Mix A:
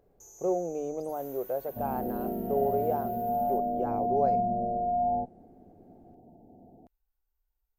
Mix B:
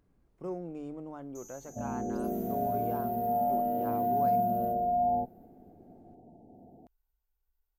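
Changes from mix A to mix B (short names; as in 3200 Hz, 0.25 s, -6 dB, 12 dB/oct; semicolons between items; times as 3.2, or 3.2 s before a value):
speech: add band shelf 560 Hz -13 dB 1.3 oct; first sound: entry +1.15 s; second sound: add HPF 47 Hz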